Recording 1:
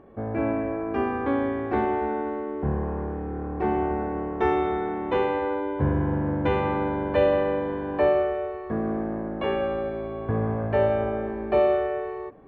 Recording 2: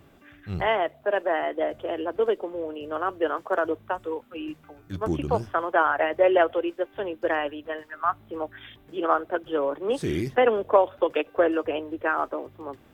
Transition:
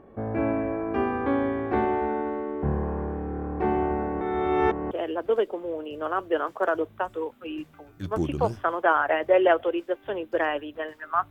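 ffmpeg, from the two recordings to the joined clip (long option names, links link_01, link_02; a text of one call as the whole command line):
ffmpeg -i cue0.wav -i cue1.wav -filter_complex "[0:a]apad=whole_dur=11.3,atrim=end=11.3,asplit=2[link_01][link_02];[link_01]atrim=end=4.212[link_03];[link_02]atrim=start=4.208:end=4.912,asetpts=PTS-STARTPTS,areverse[link_04];[1:a]atrim=start=1.808:end=8.2[link_05];[link_03][link_04]acrossfade=duration=0.004:curve1=hsin:curve2=hsin[link_06];[link_06][link_05]acrossfade=duration=0.004:curve1=hsin:curve2=hsin" out.wav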